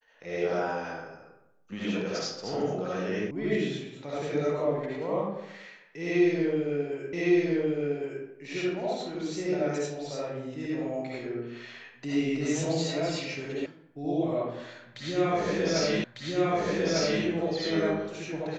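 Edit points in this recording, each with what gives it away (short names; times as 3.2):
3.31 sound cut off
7.13 repeat of the last 1.11 s
13.66 sound cut off
16.04 repeat of the last 1.2 s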